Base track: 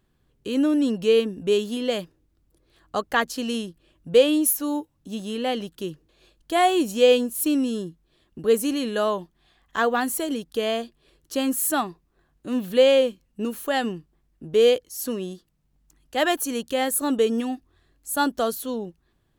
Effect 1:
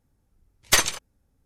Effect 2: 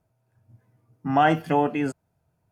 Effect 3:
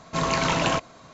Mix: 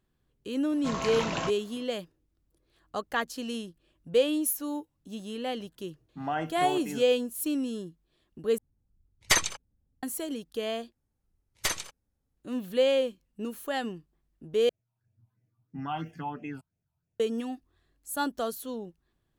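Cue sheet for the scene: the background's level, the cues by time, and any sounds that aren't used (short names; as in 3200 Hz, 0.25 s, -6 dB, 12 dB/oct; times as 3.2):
base track -7.5 dB
0.71 add 3 -9 dB
5.11 add 2 -12.5 dB
8.58 replace with 1 -4.5 dB + formant sharpening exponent 1.5
10.92 replace with 1 -11 dB
14.69 replace with 2 -11 dB + phaser stages 6, 3 Hz, lowest notch 450–1200 Hz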